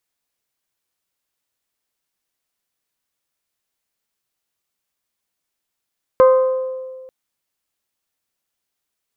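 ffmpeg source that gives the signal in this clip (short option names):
-f lavfi -i "aevalsrc='0.501*pow(10,-3*t/1.74)*sin(2*PI*519*t)+0.188*pow(10,-3*t/1.071)*sin(2*PI*1038*t)+0.0708*pow(10,-3*t/0.943)*sin(2*PI*1245.6*t)+0.0266*pow(10,-3*t/0.806)*sin(2*PI*1557*t)+0.01*pow(10,-3*t/0.659)*sin(2*PI*2076*t)':d=0.89:s=44100"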